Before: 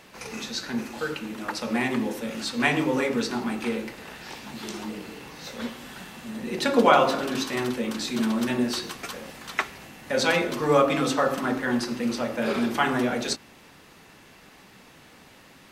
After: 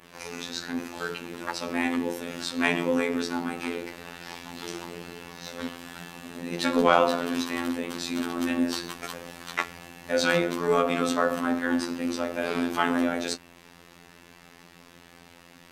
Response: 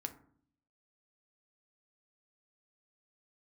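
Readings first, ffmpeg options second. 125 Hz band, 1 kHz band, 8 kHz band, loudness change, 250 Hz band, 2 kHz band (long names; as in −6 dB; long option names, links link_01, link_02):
−4.5 dB, −2.5 dB, −2.0 dB, −2.0 dB, −1.5 dB, −1.5 dB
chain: -af "adynamicequalizer=threshold=0.00708:dfrequency=5100:dqfactor=1:tfrequency=5100:tqfactor=1:attack=5:release=100:ratio=0.375:range=2:mode=cutabove:tftype=bell,acontrast=70,afftfilt=real='hypot(re,im)*cos(PI*b)':imag='0':win_size=2048:overlap=0.75,volume=-4dB"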